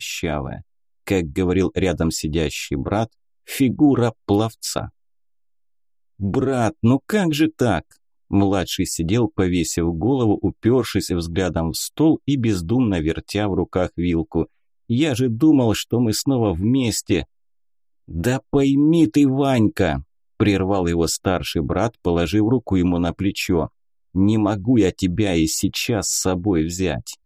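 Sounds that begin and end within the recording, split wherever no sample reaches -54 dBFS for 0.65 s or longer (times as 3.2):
6.19–17.25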